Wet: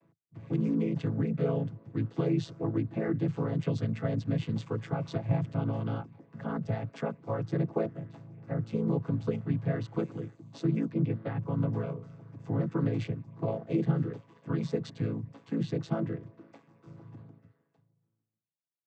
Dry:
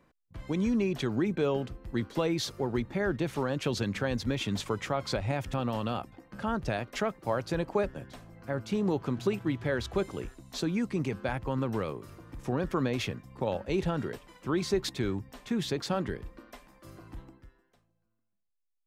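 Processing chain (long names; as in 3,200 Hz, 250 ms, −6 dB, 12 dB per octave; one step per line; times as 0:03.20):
channel vocoder with a chord as carrier major triad, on A2
0:10.92–0:11.39: Butterworth low-pass 4,700 Hz
level +1 dB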